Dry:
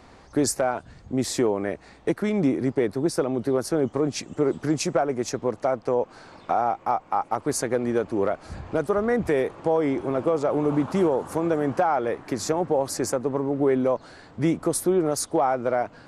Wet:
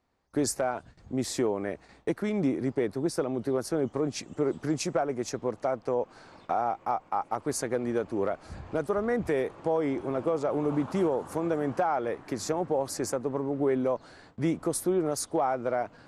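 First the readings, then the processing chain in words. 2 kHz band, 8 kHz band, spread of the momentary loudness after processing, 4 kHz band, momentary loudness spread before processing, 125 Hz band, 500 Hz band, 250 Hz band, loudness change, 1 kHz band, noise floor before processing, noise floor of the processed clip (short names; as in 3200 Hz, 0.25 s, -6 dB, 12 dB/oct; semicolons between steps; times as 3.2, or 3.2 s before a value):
-5.0 dB, -5.0 dB, 6 LU, -5.0 dB, 6 LU, -5.0 dB, -5.0 dB, -5.0 dB, -5.0 dB, -5.0 dB, -51 dBFS, -57 dBFS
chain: gate with hold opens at -37 dBFS; gain -5 dB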